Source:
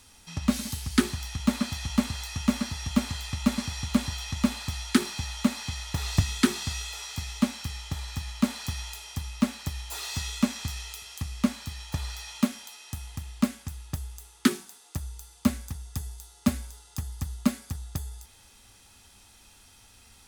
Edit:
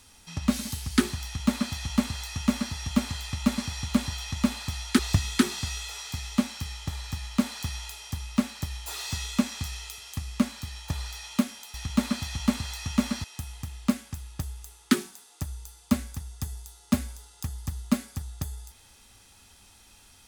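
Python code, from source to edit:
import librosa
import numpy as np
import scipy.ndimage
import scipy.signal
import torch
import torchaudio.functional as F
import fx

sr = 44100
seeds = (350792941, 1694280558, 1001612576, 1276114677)

y = fx.edit(x, sr, fx.duplicate(start_s=1.24, length_s=1.5, to_s=12.78),
    fx.cut(start_s=4.99, length_s=1.04), tone=tone)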